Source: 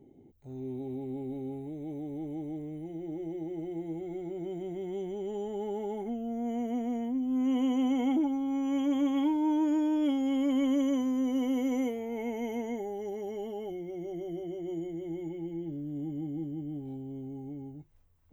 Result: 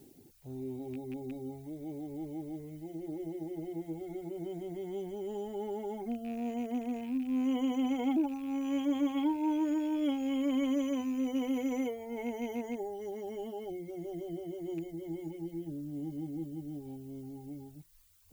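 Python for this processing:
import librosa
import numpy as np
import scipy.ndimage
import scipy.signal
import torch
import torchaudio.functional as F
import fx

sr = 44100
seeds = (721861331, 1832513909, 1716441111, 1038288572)

y = fx.rattle_buzz(x, sr, strikes_db=-37.0, level_db=-41.0)
y = fx.dmg_noise_colour(y, sr, seeds[0], colour='blue', level_db=-64.0)
y = fx.dereverb_blind(y, sr, rt60_s=0.97)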